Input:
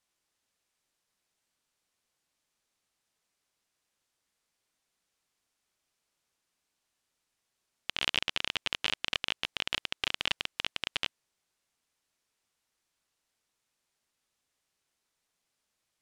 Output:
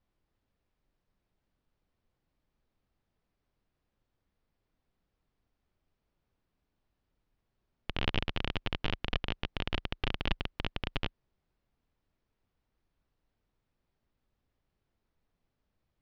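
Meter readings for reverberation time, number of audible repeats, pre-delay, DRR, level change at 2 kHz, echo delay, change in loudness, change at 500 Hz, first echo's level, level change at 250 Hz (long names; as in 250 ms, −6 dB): no reverb audible, no echo audible, no reverb audible, no reverb audible, −5.0 dB, no echo audible, −4.5 dB, +4.5 dB, no echo audible, +9.0 dB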